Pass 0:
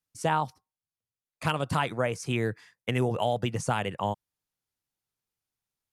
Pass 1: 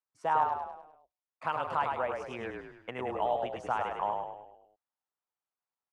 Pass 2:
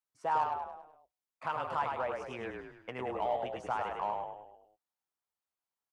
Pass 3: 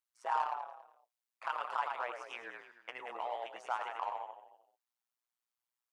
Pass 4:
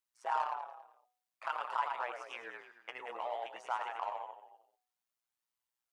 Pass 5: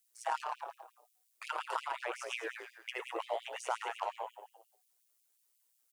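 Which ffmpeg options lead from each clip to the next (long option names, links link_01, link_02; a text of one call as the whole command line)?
ffmpeg -i in.wav -filter_complex "[0:a]bandpass=frequency=950:width_type=q:width=1.6:csg=0,asplit=7[link_01][link_02][link_03][link_04][link_05][link_06][link_07];[link_02]adelay=103,afreqshift=-31,volume=-4dB[link_08];[link_03]adelay=206,afreqshift=-62,volume=-10.4dB[link_09];[link_04]adelay=309,afreqshift=-93,volume=-16.8dB[link_10];[link_05]adelay=412,afreqshift=-124,volume=-23.1dB[link_11];[link_06]adelay=515,afreqshift=-155,volume=-29.5dB[link_12];[link_07]adelay=618,afreqshift=-186,volume=-35.9dB[link_13];[link_01][link_08][link_09][link_10][link_11][link_12][link_13]amix=inputs=7:normalize=0" out.wav
ffmpeg -i in.wav -filter_complex "[0:a]asplit=2[link_01][link_02];[link_02]asoftclip=type=tanh:threshold=-30dB,volume=-4.5dB[link_03];[link_01][link_03]amix=inputs=2:normalize=0,asplit=2[link_04][link_05];[link_05]adelay=15,volume=-13.5dB[link_06];[link_04][link_06]amix=inputs=2:normalize=0,volume=-5.5dB" out.wav
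ffmpeg -i in.wav -af "highpass=890,tremolo=f=120:d=0.824,volume=3.5dB" out.wav
ffmpeg -i in.wav -af "bandreject=frequency=246.5:width_type=h:width=4,bandreject=frequency=493:width_type=h:width=4,bandreject=frequency=739.5:width_type=h:width=4,bandreject=frequency=986:width_type=h:width=4,bandreject=frequency=1232.5:width_type=h:width=4,flanger=delay=1:depth=1.5:regen=78:speed=0.54:shape=sinusoidal,volume=4.5dB" out.wav
ffmpeg -i in.wav -af "acompressor=threshold=-38dB:ratio=2,firequalizer=gain_entry='entry(290,0);entry(810,-12);entry(8800,1)':delay=0.05:min_phase=1,afftfilt=real='re*gte(b*sr/1024,280*pow(2300/280,0.5+0.5*sin(2*PI*5.6*pts/sr)))':imag='im*gte(b*sr/1024,280*pow(2300/280,0.5+0.5*sin(2*PI*5.6*pts/sr)))':win_size=1024:overlap=0.75,volume=16dB" out.wav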